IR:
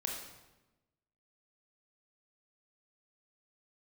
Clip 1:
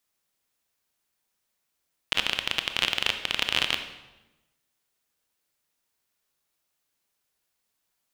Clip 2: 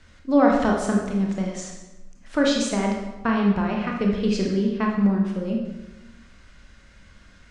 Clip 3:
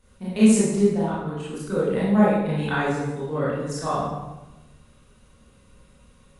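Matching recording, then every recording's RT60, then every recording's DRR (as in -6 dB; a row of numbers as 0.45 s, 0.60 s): 2; 1.1 s, 1.1 s, 1.1 s; 7.0 dB, -0.5 dB, -10.0 dB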